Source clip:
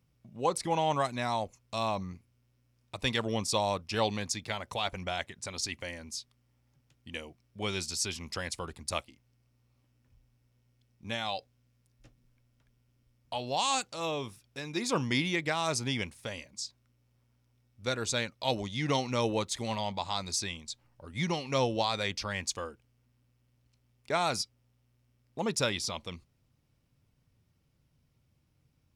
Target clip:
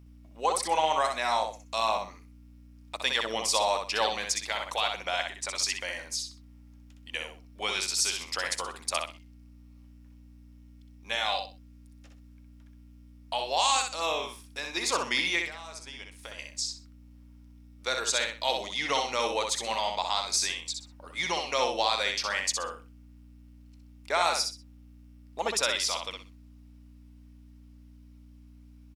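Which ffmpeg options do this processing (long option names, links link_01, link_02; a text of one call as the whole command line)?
ffmpeg -i in.wav -filter_complex "[0:a]highpass=630,asplit=2[link_01][link_02];[link_02]alimiter=limit=-22.5dB:level=0:latency=1:release=229,volume=-0.5dB[link_03];[link_01][link_03]amix=inputs=2:normalize=0,asettb=1/sr,asplit=3[link_04][link_05][link_06];[link_04]atrim=end=15.434[link_07];[link_05]atrim=start=15.43:end=16.39,asetpts=PTS-STARTPTS,afade=type=in:duration=0.004:curve=qsin,afade=type=out:start_time=0.956:duration=0.004:curve=qsin,acompressor=threshold=-40dB:ratio=12[link_08];[link_06]atrim=start=16.386[link_09];[link_07][link_08]acrossfade=duration=0.004:curve1=hsin:curve2=qsin[link_10];[link_10][link_09]acrossfade=duration=0.004:curve1=qsin:curve2=hsin,aeval=exprs='val(0)+0.00282*(sin(2*PI*60*n/s)+sin(2*PI*2*60*n/s)/2+sin(2*PI*3*60*n/s)/3+sin(2*PI*4*60*n/s)/4+sin(2*PI*5*60*n/s)/5)':channel_layout=same,aecho=1:1:63|126|189:0.562|0.135|0.0324" out.wav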